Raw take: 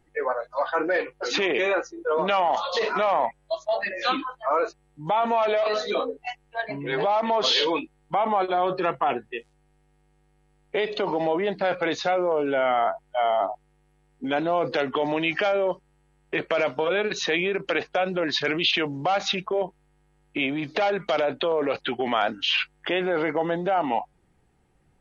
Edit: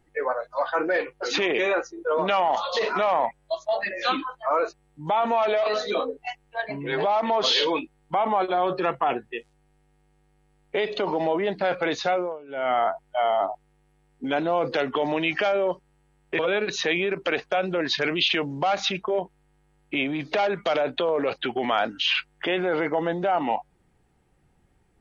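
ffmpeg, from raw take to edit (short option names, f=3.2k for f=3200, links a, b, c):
-filter_complex "[0:a]asplit=4[a][b][c][d];[a]atrim=end=12.39,asetpts=PTS-STARTPTS,afade=t=out:st=12.14:d=0.25:silence=0.1[e];[b]atrim=start=12.39:end=12.48,asetpts=PTS-STARTPTS,volume=-20dB[f];[c]atrim=start=12.48:end=16.392,asetpts=PTS-STARTPTS,afade=t=in:d=0.25:silence=0.1[g];[d]atrim=start=16.818[h];[e][f][g]concat=n=3:v=0:a=1[i];[i][h]acrossfade=d=0.004:c1=hsin:c2=hsin"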